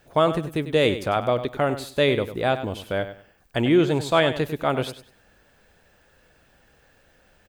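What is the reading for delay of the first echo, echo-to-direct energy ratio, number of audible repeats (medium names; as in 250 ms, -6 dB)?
98 ms, -12.0 dB, 2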